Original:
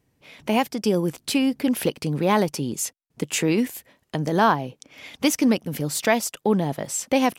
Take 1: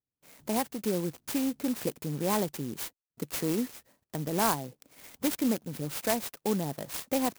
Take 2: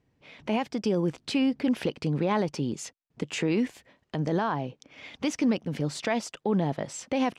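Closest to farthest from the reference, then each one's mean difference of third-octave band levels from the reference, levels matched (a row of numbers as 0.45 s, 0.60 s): 2, 1; 4.0 dB, 6.0 dB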